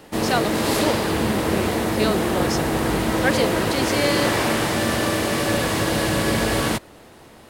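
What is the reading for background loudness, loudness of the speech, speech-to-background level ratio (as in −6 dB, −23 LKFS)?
−21.5 LKFS, −26.5 LKFS, −5.0 dB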